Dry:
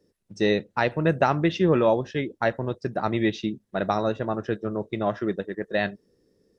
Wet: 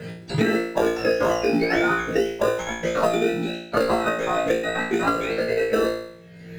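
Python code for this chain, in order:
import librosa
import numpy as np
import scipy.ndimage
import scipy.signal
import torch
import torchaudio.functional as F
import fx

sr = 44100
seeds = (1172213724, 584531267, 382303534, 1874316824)

p1 = fx.octave_mirror(x, sr, pivot_hz=910.0)
p2 = fx.peak_eq(p1, sr, hz=430.0, db=14.0, octaves=1.4)
p3 = fx.sample_hold(p2, sr, seeds[0], rate_hz=1100.0, jitter_pct=0)
p4 = p2 + F.gain(torch.from_numpy(p3), -6.5).numpy()
p5 = fx.level_steps(p4, sr, step_db=11)
p6 = fx.high_shelf(p5, sr, hz=3200.0, db=-8.0)
p7 = p6 + fx.room_flutter(p6, sr, wall_m=3.0, rt60_s=0.51, dry=0)
y = fx.band_squash(p7, sr, depth_pct=100)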